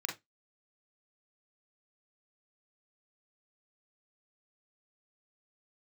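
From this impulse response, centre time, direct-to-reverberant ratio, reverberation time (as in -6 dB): 24 ms, 0.0 dB, 0.15 s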